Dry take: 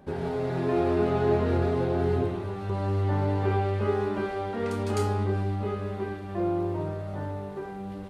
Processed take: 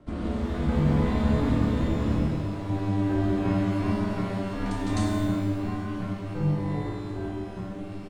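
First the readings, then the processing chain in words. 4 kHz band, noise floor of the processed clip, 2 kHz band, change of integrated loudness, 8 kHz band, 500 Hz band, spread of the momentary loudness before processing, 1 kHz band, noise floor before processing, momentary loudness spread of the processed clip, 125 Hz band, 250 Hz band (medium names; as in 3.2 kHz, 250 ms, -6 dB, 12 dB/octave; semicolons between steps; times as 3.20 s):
+3.0 dB, -36 dBFS, 0.0 dB, +0.5 dB, +2.5 dB, -6.5 dB, 10 LU, -3.5 dB, -37 dBFS, 9 LU, +1.5 dB, +4.5 dB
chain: resampled via 22.05 kHz; ring modulator 150 Hz; frequency shift -350 Hz; pitch-shifted reverb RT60 1.2 s, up +12 st, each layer -8 dB, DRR 2 dB; trim +2.5 dB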